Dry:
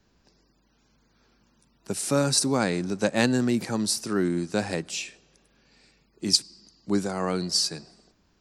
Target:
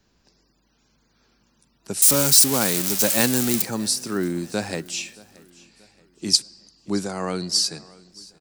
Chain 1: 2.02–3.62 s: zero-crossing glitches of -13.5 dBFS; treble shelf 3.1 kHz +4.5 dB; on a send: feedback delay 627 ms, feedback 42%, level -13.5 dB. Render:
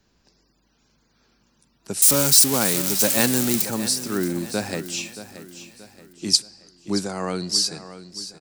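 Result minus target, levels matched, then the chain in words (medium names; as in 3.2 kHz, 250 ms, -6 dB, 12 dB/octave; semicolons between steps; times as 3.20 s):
echo-to-direct +9.5 dB
2.02–3.62 s: zero-crossing glitches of -13.5 dBFS; treble shelf 3.1 kHz +4.5 dB; on a send: feedback delay 627 ms, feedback 42%, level -23 dB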